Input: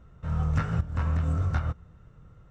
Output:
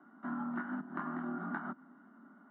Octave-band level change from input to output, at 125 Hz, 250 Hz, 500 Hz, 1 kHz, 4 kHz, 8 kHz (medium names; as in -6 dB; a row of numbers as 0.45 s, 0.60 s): -26.0 dB, -2.0 dB, -7.5 dB, -3.0 dB, under -20 dB, no reading